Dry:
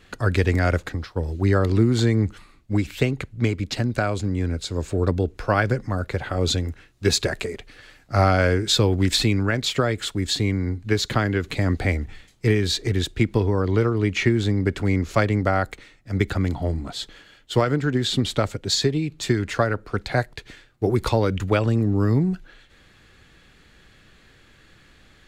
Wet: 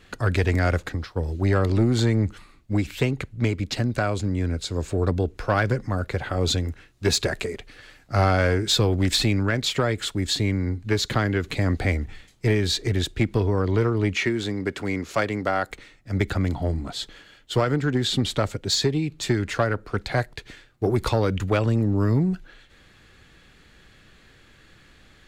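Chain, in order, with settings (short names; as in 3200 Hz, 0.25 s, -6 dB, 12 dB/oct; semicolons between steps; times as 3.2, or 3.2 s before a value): 14.16–15.71 HPF 330 Hz 6 dB/oct; soft clip -11 dBFS, distortion -18 dB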